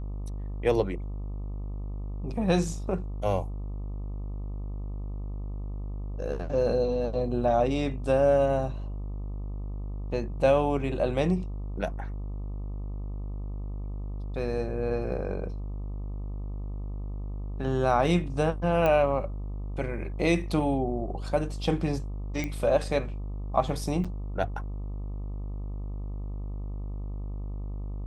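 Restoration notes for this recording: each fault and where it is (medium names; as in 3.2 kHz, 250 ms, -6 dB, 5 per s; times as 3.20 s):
buzz 50 Hz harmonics 25 -34 dBFS
18.86 s: pop -14 dBFS
22.44 s: pop -18 dBFS
24.04–24.05 s: dropout 6.3 ms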